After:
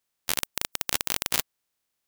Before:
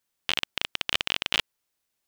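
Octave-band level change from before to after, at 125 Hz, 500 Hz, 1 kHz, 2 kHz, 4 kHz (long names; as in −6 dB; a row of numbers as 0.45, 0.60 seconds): +1.5, +1.0, 0.0, −4.5, −5.5 decibels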